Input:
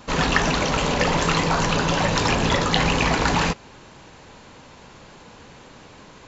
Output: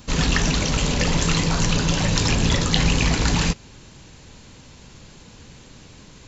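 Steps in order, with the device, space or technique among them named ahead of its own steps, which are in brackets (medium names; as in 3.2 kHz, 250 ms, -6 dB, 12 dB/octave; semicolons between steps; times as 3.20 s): smiley-face EQ (bass shelf 150 Hz +6.5 dB; peaking EQ 890 Hz -9 dB 2.5 oct; treble shelf 5.4 kHz +7 dB); trim +1 dB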